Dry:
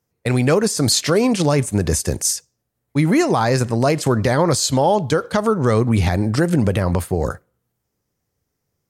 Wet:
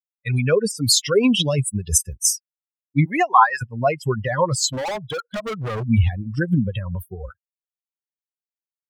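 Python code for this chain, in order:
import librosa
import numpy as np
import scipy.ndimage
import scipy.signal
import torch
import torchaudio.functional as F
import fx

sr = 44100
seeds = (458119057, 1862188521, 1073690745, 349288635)

y = fx.bin_expand(x, sr, power=3.0)
y = fx.high_shelf_res(y, sr, hz=2500.0, db=8.5, q=3.0, at=(1.23, 1.98))
y = fx.highpass_res(y, sr, hz=fx.line((3.04, 530.0), (3.61, 1500.0)), q=5.9, at=(3.04, 3.61), fade=0.02)
y = fx.clip_hard(y, sr, threshold_db=-29.5, at=(4.71, 5.82), fade=0.02)
y = y * 10.0 ** (5.0 / 20.0)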